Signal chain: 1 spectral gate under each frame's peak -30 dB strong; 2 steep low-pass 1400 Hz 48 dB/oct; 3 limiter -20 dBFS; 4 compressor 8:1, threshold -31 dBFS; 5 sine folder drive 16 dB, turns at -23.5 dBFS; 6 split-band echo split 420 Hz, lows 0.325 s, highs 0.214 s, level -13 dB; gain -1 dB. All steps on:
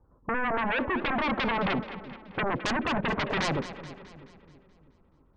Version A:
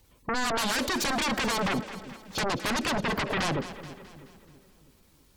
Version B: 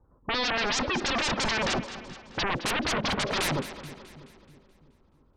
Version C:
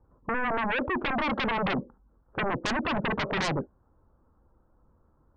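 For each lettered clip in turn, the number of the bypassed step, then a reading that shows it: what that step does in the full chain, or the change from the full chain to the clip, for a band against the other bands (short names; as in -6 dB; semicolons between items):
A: 2, 8 kHz band +13.5 dB; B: 4, mean gain reduction 5.0 dB; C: 6, echo-to-direct -11.5 dB to none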